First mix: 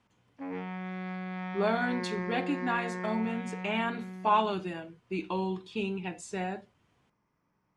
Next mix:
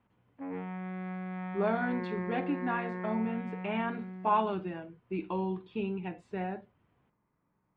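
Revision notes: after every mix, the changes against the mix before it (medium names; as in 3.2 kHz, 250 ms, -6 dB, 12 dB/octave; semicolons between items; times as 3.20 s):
master: add distance through air 480 m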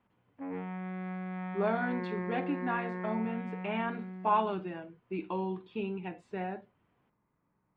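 speech: add bass shelf 110 Hz -10 dB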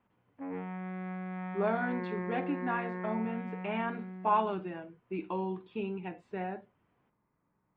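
master: add tone controls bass -1 dB, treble -8 dB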